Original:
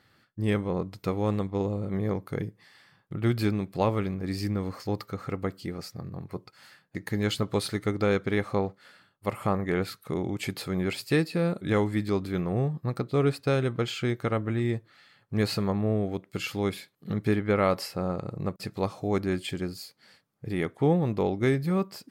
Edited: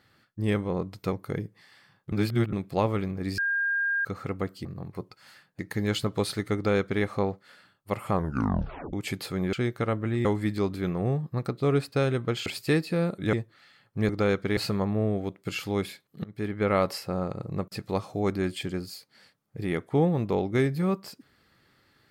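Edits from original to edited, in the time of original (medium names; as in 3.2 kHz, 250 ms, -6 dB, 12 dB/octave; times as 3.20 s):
1.12–2.15 s: delete
3.15–3.56 s: reverse
4.41–5.08 s: bleep 1.61 kHz -23.5 dBFS
5.68–6.01 s: delete
7.91–8.39 s: copy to 15.45 s
9.48 s: tape stop 0.81 s
10.89–11.76 s: swap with 13.97–14.69 s
17.12–17.59 s: fade in, from -23 dB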